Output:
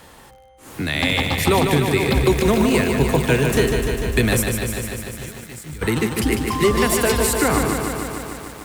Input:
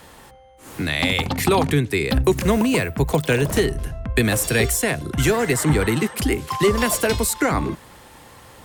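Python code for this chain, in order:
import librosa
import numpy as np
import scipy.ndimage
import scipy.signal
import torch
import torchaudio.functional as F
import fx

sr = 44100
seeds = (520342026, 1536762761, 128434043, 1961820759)

y = fx.tone_stack(x, sr, knobs='6-0-2', at=(4.41, 5.81), fade=0.02)
y = fx.echo_crushed(y, sr, ms=149, feedback_pct=80, bits=7, wet_db=-5.5)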